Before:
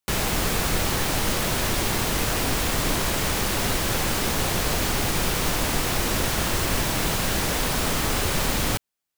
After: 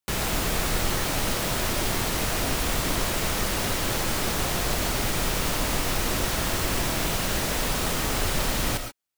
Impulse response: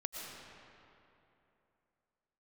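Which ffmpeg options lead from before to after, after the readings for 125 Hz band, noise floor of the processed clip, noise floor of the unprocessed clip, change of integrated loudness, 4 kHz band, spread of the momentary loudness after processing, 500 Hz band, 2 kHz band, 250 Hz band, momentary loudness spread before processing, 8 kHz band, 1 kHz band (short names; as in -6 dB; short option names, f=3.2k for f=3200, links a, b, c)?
-2.5 dB, -31 dBFS, -84 dBFS, -2.0 dB, -2.0 dB, 0 LU, -2.0 dB, -2.0 dB, -2.5 dB, 0 LU, -2.0 dB, -2.0 dB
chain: -filter_complex "[1:a]atrim=start_sample=2205,afade=t=out:st=0.19:d=0.01,atrim=end_sample=8820[a];[0:a][a]afir=irnorm=-1:irlink=0"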